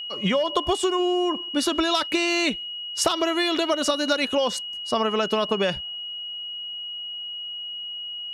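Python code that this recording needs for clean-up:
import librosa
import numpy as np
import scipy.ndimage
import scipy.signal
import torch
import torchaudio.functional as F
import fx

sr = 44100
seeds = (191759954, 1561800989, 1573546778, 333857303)

y = fx.fix_declip(x, sr, threshold_db=-10.0)
y = fx.notch(y, sr, hz=2900.0, q=30.0)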